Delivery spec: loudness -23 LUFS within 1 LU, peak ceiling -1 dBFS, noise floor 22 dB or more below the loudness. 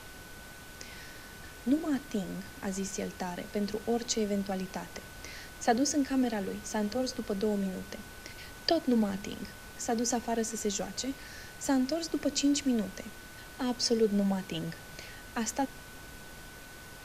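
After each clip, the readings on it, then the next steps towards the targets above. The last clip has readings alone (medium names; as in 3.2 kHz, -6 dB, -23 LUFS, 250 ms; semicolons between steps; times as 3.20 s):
steady tone 1.5 kHz; tone level -52 dBFS; noise floor -48 dBFS; noise floor target -54 dBFS; loudness -32.0 LUFS; peak level -11.5 dBFS; loudness target -23.0 LUFS
-> band-stop 1.5 kHz, Q 30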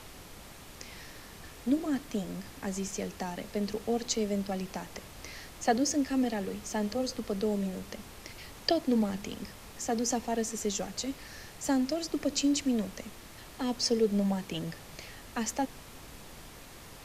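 steady tone not found; noise floor -49 dBFS; noise floor target -54 dBFS
-> noise print and reduce 6 dB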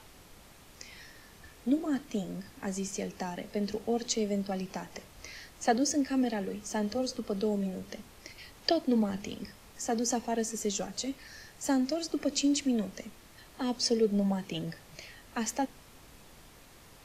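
noise floor -55 dBFS; loudness -32.0 LUFS; peak level -11.5 dBFS; loudness target -23.0 LUFS
-> trim +9 dB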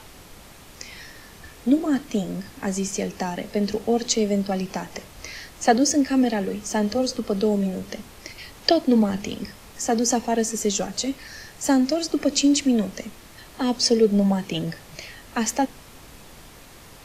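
loudness -23.0 LUFS; peak level -2.5 dBFS; noise floor -46 dBFS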